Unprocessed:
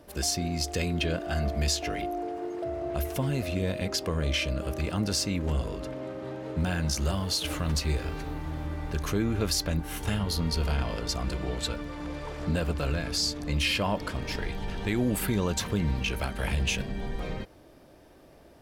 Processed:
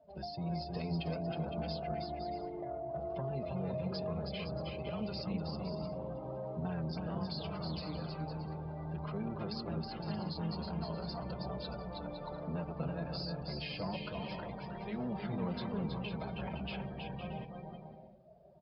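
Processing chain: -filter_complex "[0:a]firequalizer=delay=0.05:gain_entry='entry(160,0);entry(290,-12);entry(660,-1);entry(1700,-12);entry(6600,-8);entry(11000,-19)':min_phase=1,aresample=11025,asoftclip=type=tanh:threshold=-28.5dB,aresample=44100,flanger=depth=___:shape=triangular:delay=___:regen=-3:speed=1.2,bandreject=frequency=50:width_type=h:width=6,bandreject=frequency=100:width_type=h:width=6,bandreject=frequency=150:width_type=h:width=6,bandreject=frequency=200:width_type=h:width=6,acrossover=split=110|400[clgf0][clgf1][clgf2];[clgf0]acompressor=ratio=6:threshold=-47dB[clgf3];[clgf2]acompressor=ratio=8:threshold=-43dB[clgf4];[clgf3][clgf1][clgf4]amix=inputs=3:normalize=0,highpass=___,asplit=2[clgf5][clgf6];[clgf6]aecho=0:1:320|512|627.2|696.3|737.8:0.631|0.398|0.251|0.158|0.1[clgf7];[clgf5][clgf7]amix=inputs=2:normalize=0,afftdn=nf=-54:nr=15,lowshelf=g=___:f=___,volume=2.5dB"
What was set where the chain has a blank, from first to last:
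1.9, 4.5, 59, -7.5, 86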